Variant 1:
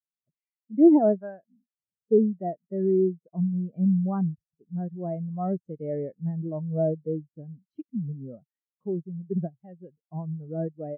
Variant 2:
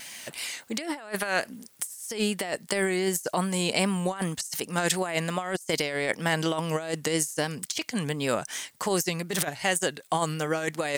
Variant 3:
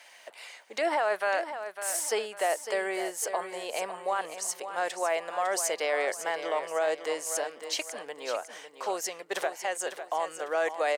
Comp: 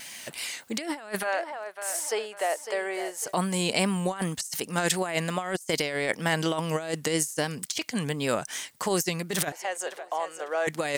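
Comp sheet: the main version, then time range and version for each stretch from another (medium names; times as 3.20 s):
2
1.24–3.28 s: from 3, crossfade 0.10 s
9.52–10.67 s: from 3
not used: 1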